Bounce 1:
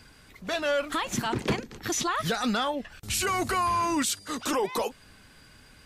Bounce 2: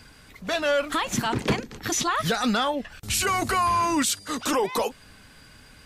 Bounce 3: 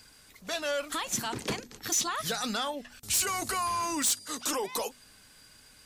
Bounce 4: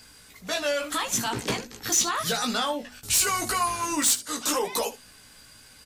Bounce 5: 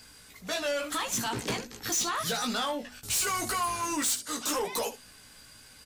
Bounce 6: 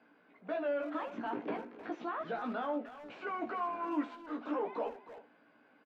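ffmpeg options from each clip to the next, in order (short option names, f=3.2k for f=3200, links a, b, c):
-af "bandreject=f=360:w=12,volume=3.5dB"
-af "bass=f=250:g=-4,treble=f=4k:g=10,bandreject=f=81.61:t=h:w=4,bandreject=f=163.22:t=h:w=4,bandreject=f=244.83:t=h:w=4,aeval=exprs='0.282*(abs(mod(val(0)/0.282+3,4)-2)-1)':c=same,volume=-8.5dB"
-af "aecho=1:1:17|77:0.668|0.188,volume=3.5dB"
-af "asoftclip=type=tanh:threshold=-22.5dB,volume=-1.5dB"
-filter_complex "[0:a]highpass=f=210:w=0.5412,highpass=f=210:w=1.3066,equalizer=f=300:t=q:w=4:g=6,equalizer=f=660:t=q:w=4:g=5,equalizer=f=1.2k:t=q:w=4:g=-3,equalizer=f=1.9k:t=q:w=4:g=-7,lowpass=f=2k:w=0.5412,lowpass=f=2k:w=1.3066,asplit=2[a][b];[b]adelay=310,highpass=300,lowpass=3.4k,asoftclip=type=hard:threshold=-29.5dB,volume=-12dB[c];[a][c]amix=inputs=2:normalize=0,volume=-5dB"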